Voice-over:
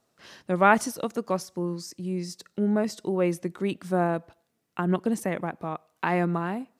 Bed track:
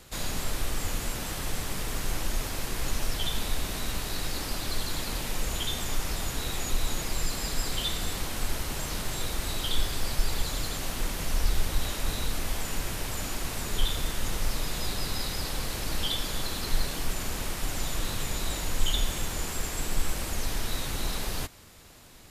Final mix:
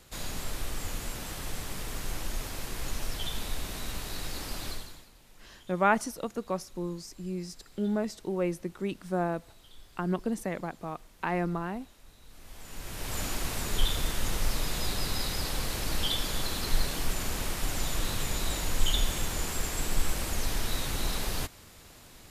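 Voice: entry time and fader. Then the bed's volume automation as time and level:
5.20 s, -5.0 dB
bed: 4.69 s -4.5 dB
5.12 s -25.5 dB
12.20 s -25.5 dB
13.17 s 0 dB

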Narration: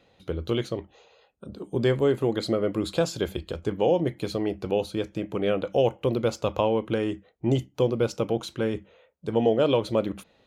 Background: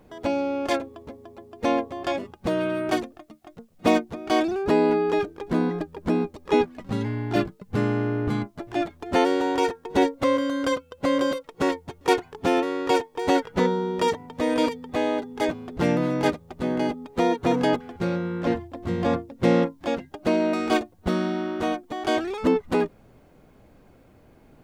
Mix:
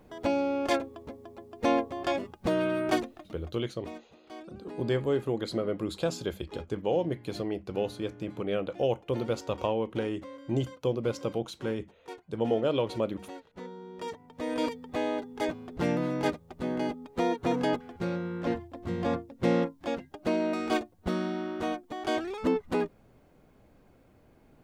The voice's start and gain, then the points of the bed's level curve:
3.05 s, -5.5 dB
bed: 3.42 s -2.5 dB
3.68 s -23.5 dB
13.47 s -23.5 dB
14.72 s -6 dB

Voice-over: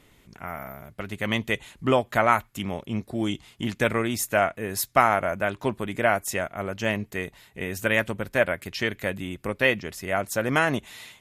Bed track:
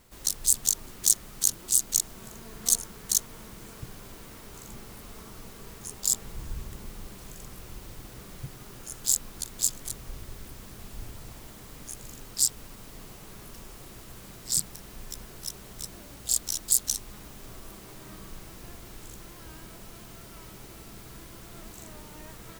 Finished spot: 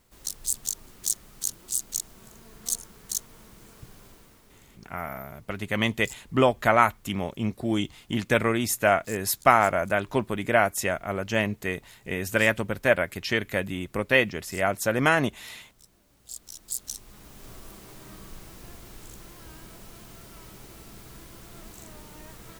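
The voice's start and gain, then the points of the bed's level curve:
4.50 s, +1.0 dB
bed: 4.06 s -5.5 dB
4.88 s -18 dB
16.05 s -18 dB
17.48 s -0.5 dB

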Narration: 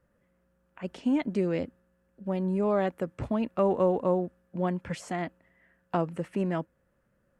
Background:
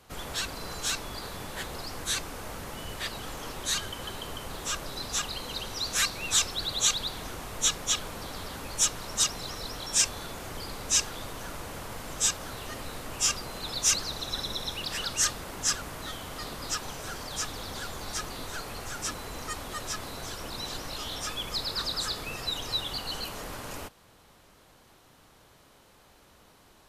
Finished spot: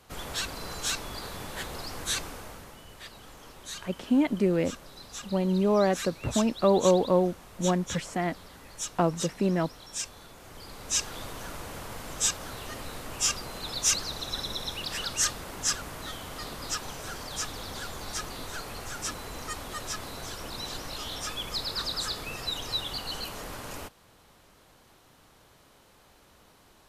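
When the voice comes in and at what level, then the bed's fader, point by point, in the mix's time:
3.05 s, +3.0 dB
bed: 2.25 s 0 dB
2.83 s -10.5 dB
10.35 s -10.5 dB
11.17 s -0.5 dB

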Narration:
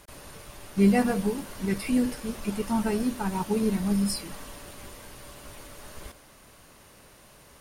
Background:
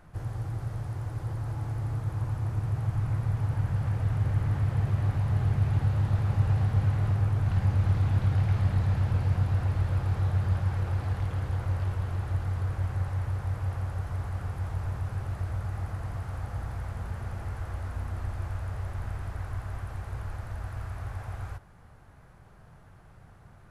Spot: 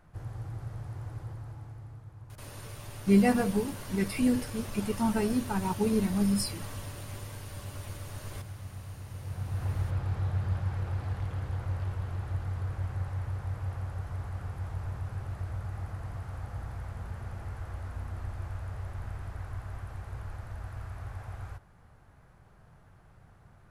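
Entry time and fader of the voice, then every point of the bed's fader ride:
2.30 s, -1.5 dB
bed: 1.14 s -5.5 dB
2.13 s -17.5 dB
9.06 s -17.5 dB
9.69 s -4 dB

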